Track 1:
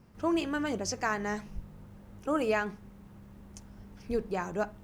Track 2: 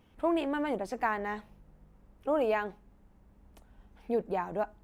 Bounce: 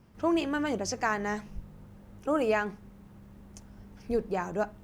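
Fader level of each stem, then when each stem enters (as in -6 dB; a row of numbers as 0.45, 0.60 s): -0.5, -9.5 dB; 0.00, 0.00 s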